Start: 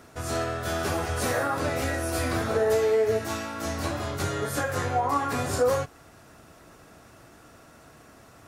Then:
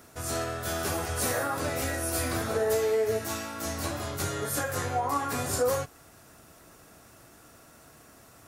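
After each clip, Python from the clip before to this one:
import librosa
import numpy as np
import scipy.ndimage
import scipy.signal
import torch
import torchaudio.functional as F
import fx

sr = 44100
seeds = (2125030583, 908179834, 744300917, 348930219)

y = fx.high_shelf(x, sr, hz=7200.0, db=12.0)
y = y * librosa.db_to_amplitude(-3.5)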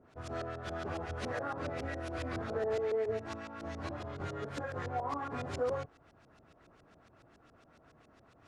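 y = fx.cvsd(x, sr, bps=64000)
y = fx.filter_lfo_lowpass(y, sr, shape='saw_up', hz=7.2, low_hz=470.0, high_hz=4700.0, q=0.92)
y = y * librosa.db_to_amplitude(-7.0)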